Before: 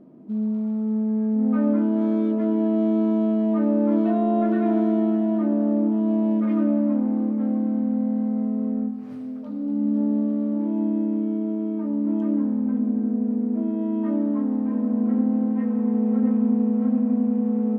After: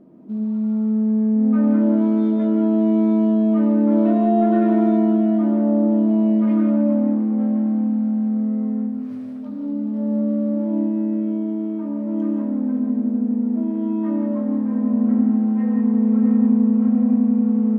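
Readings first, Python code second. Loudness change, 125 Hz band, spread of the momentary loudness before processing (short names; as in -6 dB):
+3.5 dB, n/a, 5 LU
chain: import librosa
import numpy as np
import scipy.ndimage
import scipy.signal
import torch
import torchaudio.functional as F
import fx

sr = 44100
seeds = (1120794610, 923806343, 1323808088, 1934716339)

y = fx.rev_gated(x, sr, seeds[0], gate_ms=200, shape='rising', drr_db=2.0)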